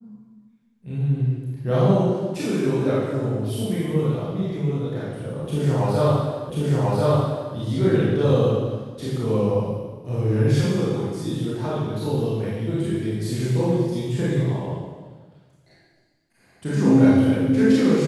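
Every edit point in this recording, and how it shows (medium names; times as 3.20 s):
6.50 s: repeat of the last 1.04 s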